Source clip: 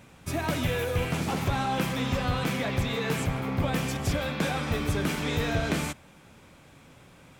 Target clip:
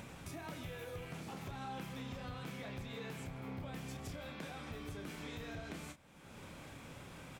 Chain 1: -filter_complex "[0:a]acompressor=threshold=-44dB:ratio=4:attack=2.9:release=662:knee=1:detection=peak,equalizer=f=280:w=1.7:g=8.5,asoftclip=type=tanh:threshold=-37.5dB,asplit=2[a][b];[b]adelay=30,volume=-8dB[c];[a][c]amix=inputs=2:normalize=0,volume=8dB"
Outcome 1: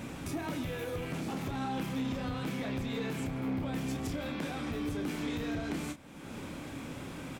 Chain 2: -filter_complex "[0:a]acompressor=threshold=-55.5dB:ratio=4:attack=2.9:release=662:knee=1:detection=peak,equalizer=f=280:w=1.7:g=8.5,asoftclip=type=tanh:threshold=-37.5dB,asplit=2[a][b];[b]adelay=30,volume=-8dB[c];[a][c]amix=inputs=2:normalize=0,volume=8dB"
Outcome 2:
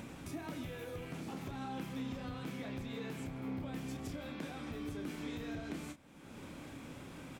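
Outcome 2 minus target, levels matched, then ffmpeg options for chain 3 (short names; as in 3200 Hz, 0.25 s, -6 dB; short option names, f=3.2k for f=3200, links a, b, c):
250 Hz band +3.5 dB
-filter_complex "[0:a]acompressor=threshold=-55.5dB:ratio=4:attack=2.9:release=662:knee=1:detection=peak,asoftclip=type=tanh:threshold=-37.5dB,asplit=2[a][b];[b]adelay=30,volume=-8dB[c];[a][c]amix=inputs=2:normalize=0,volume=8dB"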